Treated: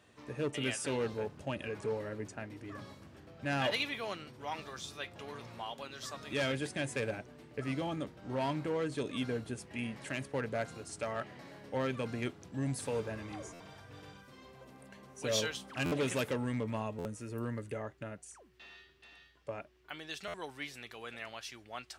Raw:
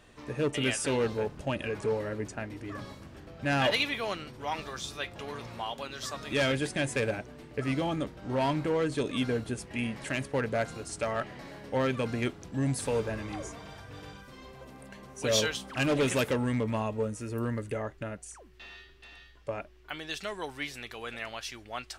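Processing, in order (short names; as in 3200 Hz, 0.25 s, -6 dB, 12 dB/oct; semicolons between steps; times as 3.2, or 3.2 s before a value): HPF 72 Hz 24 dB/oct; stuck buffer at 13.53/15.85/16.98/20.27, samples 512, times 5; gain -6 dB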